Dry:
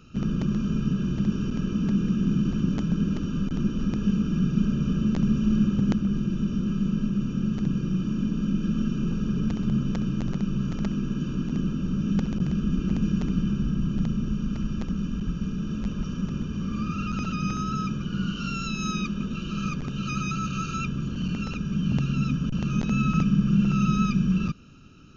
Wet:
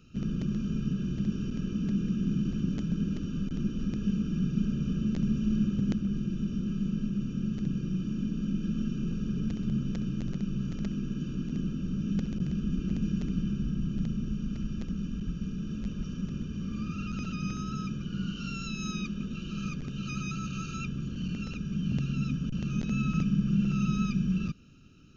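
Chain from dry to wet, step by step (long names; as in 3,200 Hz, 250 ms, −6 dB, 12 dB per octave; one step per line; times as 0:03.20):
parametric band 940 Hz −9.5 dB 1.1 octaves
level −5 dB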